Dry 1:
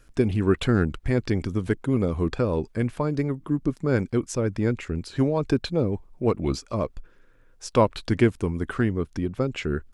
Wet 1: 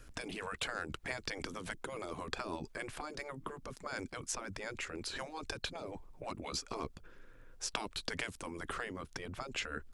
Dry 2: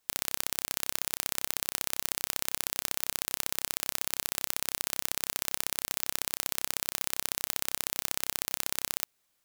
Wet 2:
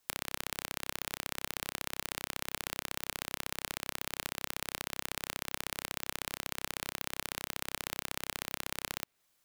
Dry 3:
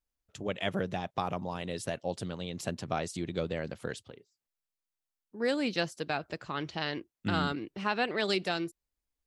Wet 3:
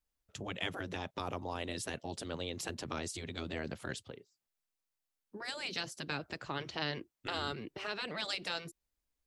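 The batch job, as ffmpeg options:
-filter_complex "[0:a]acrossover=split=360|3700[a][b][c];[a]acompressor=threshold=-34dB:ratio=4[d];[b]acompressor=threshold=-35dB:ratio=4[e];[c]acompressor=threshold=-38dB:ratio=4[f];[d][e][f]amix=inputs=3:normalize=0,afftfilt=real='re*lt(hypot(re,im),0.0794)':imag='im*lt(hypot(re,im),0.0794)':win_size=1024:overlap=0.75,volume=1dB"

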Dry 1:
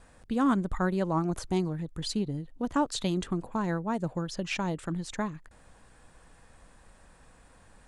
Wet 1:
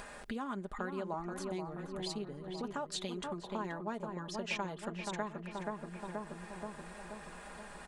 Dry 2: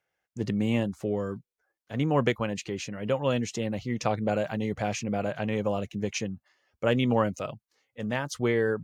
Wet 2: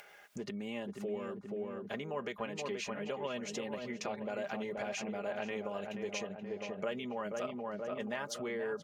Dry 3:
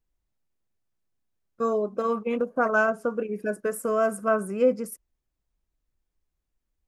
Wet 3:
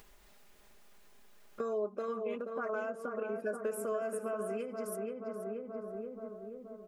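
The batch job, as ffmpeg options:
-filter_complex "[0:a]alimiter=limit=-20dB:level=0:latency=1:release=52,asplit=2[a][b];[b]adelay=479,lowpass=f=1.5k:p=1,volume=-5.5dB,asplit=2[c][d];[d]adelay=479,lowpass=f=1.5k:p=1,volume=0.53,asplit=2[e][f];[f]adelay=479,lowpass=f=1.5k:p=1,volume=0.53,asplit=2[g][h];[h]adelay=479,lowpass=f=1.5k:p=1,volume=0.53,asplit=2[i][j];[j]adelay=479,lowpass=f=1.5k:p=1,volume=0.53,asplit=2[k][l];[l]adelay=479,lowpass=f=1.5k:p=1,volume=0.53,asplit=2[m][n];[n]adelay=479,lowpass=f=1.5k:p=1,volume=0.53[o];[a][c][e][g][i][k][m][o]amix=inputs=8:normalize=0,acompressor=threshold=-43dB:ratio=5,bass=f=250:g=-13,treble=f=4k:g=-9,aecho=1:1:4.9:0.56,acompressor=mode=upward:threshold=-52dB:ratio=2.5,highshelf=f=3.7k:g=6.5,volume=7.5dB"

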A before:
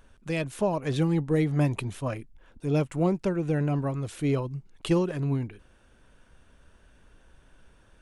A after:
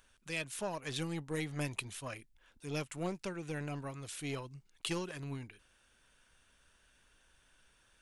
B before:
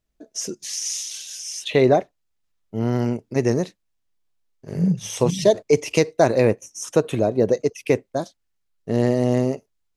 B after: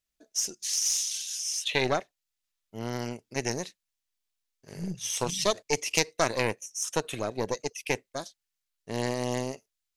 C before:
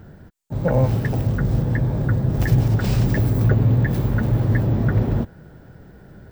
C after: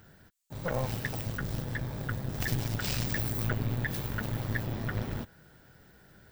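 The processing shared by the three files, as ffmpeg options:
-af "aeval=exprs='0.891*(cos(1*acos(clip(val(0)/0.891,-1,1)))-cos(1*PI/2))+0.178*(cos(4*acos(clip(val(0)/0.891,-1,1)))-cos(4*PI/2))':c=same,tiltshelf=f=1.2k:g=-8.5,volume=-7.5dB"

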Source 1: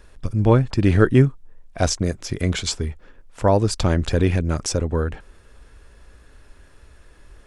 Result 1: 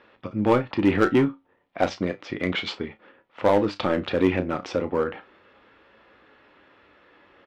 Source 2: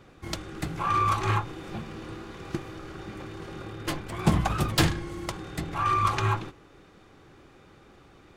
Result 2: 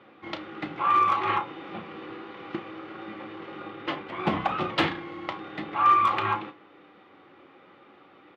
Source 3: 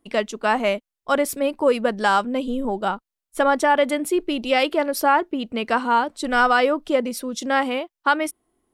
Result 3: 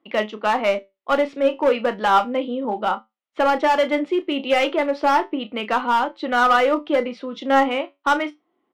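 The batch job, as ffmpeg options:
-filter_complex "[0:a]highpass=370,equalizer=f=420:t=q:w=4:g=-7,equalizer=f=660:t=q:w=4:g=-6,equalizer=f=1k:t=q:w=4:g=-4,equalizer=f=1.6k:t=q:w=4:g=-8,equalizer=f=2.5k:t=q:w=4:g=-4,lowpass=f=2.9k:w=0.5412,lowpass=f=2.9k:w=1.3066,asplit=2[a][b];[b]aeval=exprs='0.0794*(abs(mod(val(0)/0.0794+3,4)-2)-1)':c=same,volume=-7dB[c];[a][c]amix=inputs=2:normalize=0,asplit=2[d][e];[e]adelay=33,volume=-12dB[f];[d][f]amix=inputs=2:normalize=0,flanger=delay=9:depth=2.1:regen=72:speed=0.33:shape=triangular,volume=8dB"

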